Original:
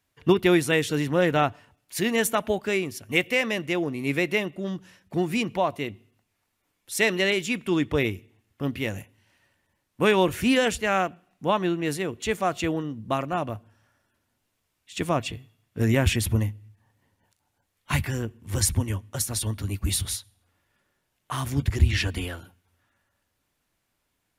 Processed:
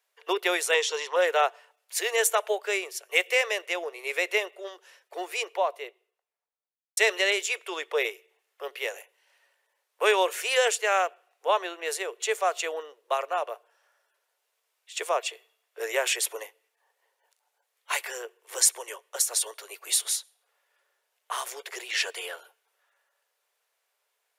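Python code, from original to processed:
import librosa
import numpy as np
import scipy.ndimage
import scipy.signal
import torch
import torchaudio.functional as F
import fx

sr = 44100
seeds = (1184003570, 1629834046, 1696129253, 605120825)

y = fx.cabinet(x, sr, low_hz=290.0, low_slope=12, high_hz=9100.0, hz=(640.0, 1000.0, 1500.0, 3300.0, 5600.0, 8600.0), db=(-6, 10, -5, 5, 5, -9), at=(0.74, 1.16))
y = fx.studio_fade_out(y, sr, start_s=5.22, length_s=1.75)
y = scipy.signal.sosfilt(scipy.signal.butter(12, 410.0, 'highpass', fs=sr, output='sos'), y)
y = fx.dynamic_eq(y, sr, hz=7300.0, q=1.5, threshold_db=-46.0, ratio=4.0, max_db=6)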